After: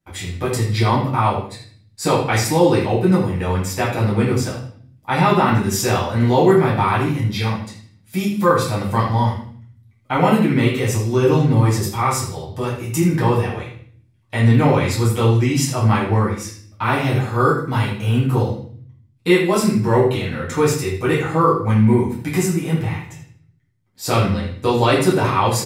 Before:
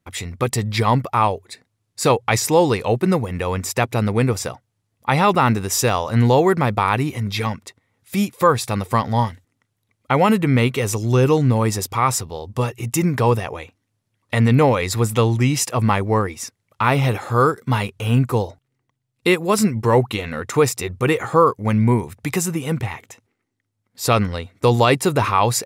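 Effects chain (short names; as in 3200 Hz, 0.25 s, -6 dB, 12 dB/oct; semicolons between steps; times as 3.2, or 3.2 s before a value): notches 50/100 Hz; feedback echo 78 ms, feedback 29%, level -13 dB; reverb RT60 0.50 s, pre-delay 6 ms, DRR -7 dB; gain -8.5 dB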